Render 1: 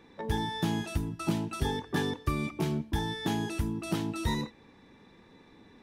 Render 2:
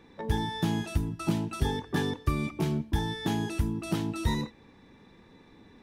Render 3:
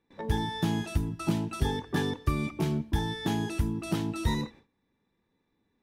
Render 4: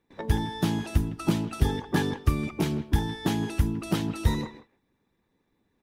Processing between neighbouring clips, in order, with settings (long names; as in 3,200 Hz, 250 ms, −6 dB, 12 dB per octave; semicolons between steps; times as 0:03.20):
low-shelf EQ 160 Hz +4.5 dB
noise gate with hold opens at −43 dBFS
far-end echo of a speakerphone 160 ms, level −13 dB; harmonic and percussive parts rebalanced harmonic −8 dB; level +6.5 dB